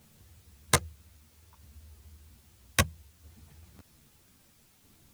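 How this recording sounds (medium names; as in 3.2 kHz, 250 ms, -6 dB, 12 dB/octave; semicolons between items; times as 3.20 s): tremolo saw down 0.62 Hz, depth 55%; a quantiser's noise floor 12-bit, dither triangular; a shimmering, thickened sound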